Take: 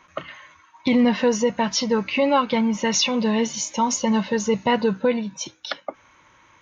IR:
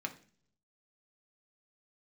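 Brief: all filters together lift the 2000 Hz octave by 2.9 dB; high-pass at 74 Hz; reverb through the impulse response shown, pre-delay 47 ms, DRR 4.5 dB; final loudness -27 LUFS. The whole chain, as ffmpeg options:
-filter_complex "[0:a]highpass=74,equalizer=f=2k:t=o:g=3.5,asplit=2[a][b];[1:a]atrim=start_sample=2205,adelay=47[c];[b][c]afir=irnorm=-1:irlink=0,volume=-6dB[d];[a][d]amix=inputs=2:normalize=0,volume=-7dB"

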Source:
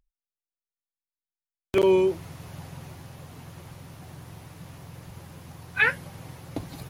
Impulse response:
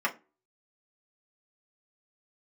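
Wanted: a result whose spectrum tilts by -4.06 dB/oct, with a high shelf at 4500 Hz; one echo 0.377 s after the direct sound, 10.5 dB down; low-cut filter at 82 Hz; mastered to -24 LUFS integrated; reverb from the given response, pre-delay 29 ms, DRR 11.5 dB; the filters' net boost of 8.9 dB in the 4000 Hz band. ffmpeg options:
-filter_complex "[0:a]highpass=82,equalizer=f=4k:t=o:g=8,highshelf=f=4.5k:g=8.5,aecho=1:1:377:0.299,asplit=2[a][b];[1:a]atrim=start_sample=2205,adelay=29[c];[b][c]afir=irnorm=-1:irlink=0,volume=-22dB[d];[a][d]amix=inputs=2:normalize=0"

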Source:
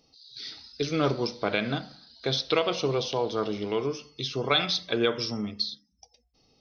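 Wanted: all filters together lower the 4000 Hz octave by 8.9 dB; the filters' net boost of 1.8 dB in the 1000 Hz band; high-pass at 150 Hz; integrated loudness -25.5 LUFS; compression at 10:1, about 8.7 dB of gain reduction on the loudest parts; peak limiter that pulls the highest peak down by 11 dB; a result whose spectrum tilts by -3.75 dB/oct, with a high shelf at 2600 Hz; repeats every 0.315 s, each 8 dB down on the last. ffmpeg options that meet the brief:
-af "highpass=150,equalizer=f=1k:t=o:g=3.5,highshelf=f=2.6k:g=-3,equalizer=f=4k:t=o:g=-8.5,acompressor=threshold=-28dB:ratio=10,alimiter=level_in=2.5dB:limit=-24dB:level=0:latency=1,volume=-2.5dB,aecho=1:1:315|630|945|1260|1575:0.398|0.159|0.0637|0.0255|0.0102,volume=12dB"

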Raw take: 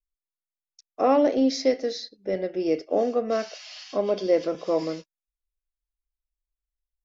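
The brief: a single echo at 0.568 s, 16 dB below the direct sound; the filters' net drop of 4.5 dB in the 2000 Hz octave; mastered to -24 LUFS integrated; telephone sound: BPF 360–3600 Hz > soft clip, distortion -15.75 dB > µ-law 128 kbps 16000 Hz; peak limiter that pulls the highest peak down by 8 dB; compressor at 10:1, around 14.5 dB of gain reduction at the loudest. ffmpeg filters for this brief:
-af "equalizer=f=2k:t=o:g=-5,acompressor=threshold=-31dB:ratio=10,alimiter=level_in=4.5dB:limit=-24dB:level=0:latency=1,volume=-4.5dB,highpass=360,lowpass=3.6k,aecho=1:1:568:0.158,asoftclip=threshold=-34.5dB,volume=19dB" -ar 16000 -c:a pcm_mulaw

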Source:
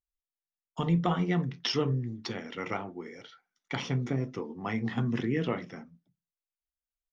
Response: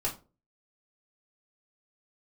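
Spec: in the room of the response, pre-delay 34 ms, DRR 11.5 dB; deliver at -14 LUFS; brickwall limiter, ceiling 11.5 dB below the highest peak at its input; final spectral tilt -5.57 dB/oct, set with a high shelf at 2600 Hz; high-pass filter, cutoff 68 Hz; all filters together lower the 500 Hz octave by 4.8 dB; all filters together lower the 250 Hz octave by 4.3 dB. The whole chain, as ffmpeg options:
-filter_complex "[0:a]highpass=68,equalizer=f=250:t=o:g=-5.5,equalizer=f=500:t=o:g=-4,highshelf=f=2.6k:g=-4.5,alimiter=level_in=5.5dB:limit=-24dB:level=0:latency=1,volume=-5.5dB,asplit=2[a][b];[1:a]atrim=start_sample=2205,adelay=34[c];[b][c]afir=irnorm=-1:irlink=0,volume=-16.5dB[d];[a][d]amix=inputs=2:normalize=0,volume=25.5dB"

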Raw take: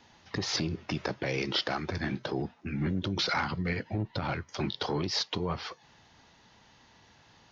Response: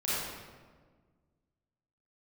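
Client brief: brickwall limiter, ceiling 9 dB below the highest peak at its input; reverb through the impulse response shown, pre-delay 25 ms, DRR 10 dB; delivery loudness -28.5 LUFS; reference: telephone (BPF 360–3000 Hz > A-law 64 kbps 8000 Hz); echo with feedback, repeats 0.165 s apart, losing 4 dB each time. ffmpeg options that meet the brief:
-filter_complex "[0:a]alimiter=level_in=2.5dB:limit=-24dB:level=0:latency=1,volume=-2.5dB,aecho=1:1:165|330|495|660|825|990|1155|1320|1485:0.631|0.398|0.25|0.158|0.0994|0.0626|0.0394|0.0249|0.0157,asplit=2[a][b];[1:a]atrim=start_sample=2205,adelay=25[c];[b][c]afir=irnorm=-1:irlink=0,volume=-18dB[d];[a][d]amix=inputs=2:normalize=0,highpass=360,lowpass=3k,volume=10.5dB" -ar 8000 -c:a pcm_alaw

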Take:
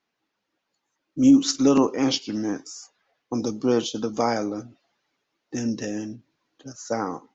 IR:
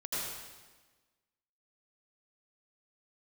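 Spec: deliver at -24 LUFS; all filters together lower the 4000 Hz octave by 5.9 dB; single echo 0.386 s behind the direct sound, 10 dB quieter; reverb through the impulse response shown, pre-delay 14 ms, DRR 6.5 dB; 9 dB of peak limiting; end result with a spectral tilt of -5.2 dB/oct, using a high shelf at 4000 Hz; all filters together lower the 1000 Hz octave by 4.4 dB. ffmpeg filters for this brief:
-filter_complex "[0:a]equalizer=f=1k:t=o:g=-5.5,highshelf=f=4k:g=-3.5,equalizer=f=4k:t=o:g=-5.5,alimiter=limit=-16.5dB:level=0:latency=1,aecho=1:1:386:0.316,asplit=2[a][b];[1:a]atrim=start_sample=2205,adelay=14[c];[b][c]afir=irnorm=-1:irlink=0,volume=-11dB[d];[a][d]amix=inputs=2:normalize=0,volume=3.5dB"

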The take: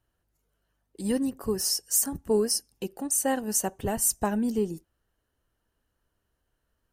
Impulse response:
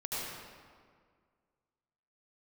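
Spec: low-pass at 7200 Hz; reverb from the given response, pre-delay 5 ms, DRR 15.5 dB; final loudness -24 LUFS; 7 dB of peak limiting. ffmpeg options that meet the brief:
-filter_complex "[0:a]lowpass=7.2k,alimiter=limit=-22dB:level=0:latency=1,asplit=2[a][b];[1:a]atrim=start_sample=2205,adelay=5[c];[b][c]afir=irnorm=-1:irlink=0,volume=-20dB[d];[a][d]amix=inputs=2:normalize=0,volume=7.5dB"

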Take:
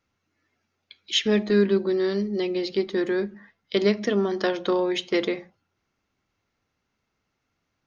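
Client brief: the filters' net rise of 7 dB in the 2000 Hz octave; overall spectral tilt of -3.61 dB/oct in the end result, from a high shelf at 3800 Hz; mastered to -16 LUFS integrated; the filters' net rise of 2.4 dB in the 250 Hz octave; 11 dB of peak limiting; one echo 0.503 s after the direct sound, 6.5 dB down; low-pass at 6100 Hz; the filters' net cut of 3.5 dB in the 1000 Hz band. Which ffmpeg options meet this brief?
-af "lowpass=6.1k,equalizer=f=250:t=o:g=4,equalizer=f=1k:t=o:g=-8,equalizer=f=2k:t=o:g=8.5,highshelf=f=3.8k:g=7.5,alimiter=limit=-15.5dB:level=0:latency=1,aecho=1:1:503:0.473,volume=9dB"

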